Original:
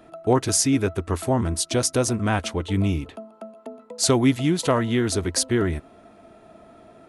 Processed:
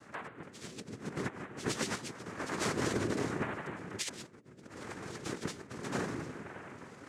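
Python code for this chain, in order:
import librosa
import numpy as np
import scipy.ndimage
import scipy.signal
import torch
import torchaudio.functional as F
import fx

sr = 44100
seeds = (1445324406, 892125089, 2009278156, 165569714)

y = scipy.signal.sosfilt(scipy.signal.ellip(4, 1.0, 40, 260.0, 'highpass', fs=sr, output='sos'), x)
y = fx.rev_plate(y, sr, seeds[0], rt60_s=1.5, hf_ratio=0.6, predelay_ms=95, drr_db=-2.5)
y = fx.phaser_stages(y, sr, stages=6, low_hz=630.0, high_hz=1700.0, hz=0.95, feedback_pct=20)
y = fx.over_compress(y, sr, threshold_db=-30.0, ratio=-0.5)
y = fx.noise_vocoder(y, sr, seeds[1], bands=3)
y = F.gain(torch.from_numpy(y), -8.0).numpy()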